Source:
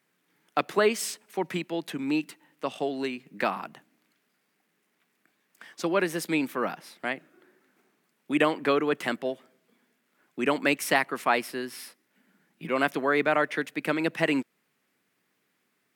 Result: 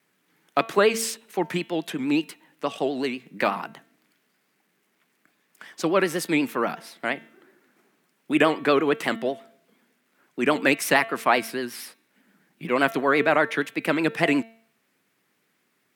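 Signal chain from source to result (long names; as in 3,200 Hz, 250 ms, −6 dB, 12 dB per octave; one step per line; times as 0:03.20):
pitch vibrato 8.3 Hz 100 cents
hum removal 225.9 Hz, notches 18
level +4 dB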